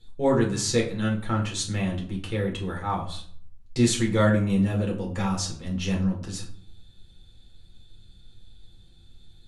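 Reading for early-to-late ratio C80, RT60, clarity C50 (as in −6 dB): 13.0 dB, 0.55 s, 9.0 dB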